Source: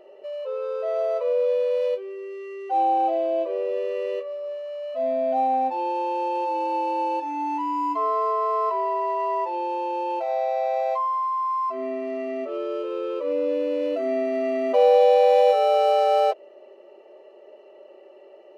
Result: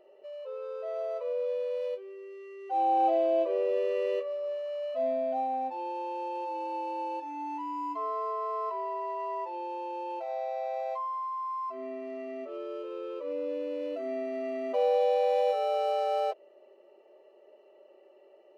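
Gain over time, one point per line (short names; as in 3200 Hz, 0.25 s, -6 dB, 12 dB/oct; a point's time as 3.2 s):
2.57 s -9.5 dB
3.09 s -2 dB
4.84 s -2 dB
5.47 s -9.5 dB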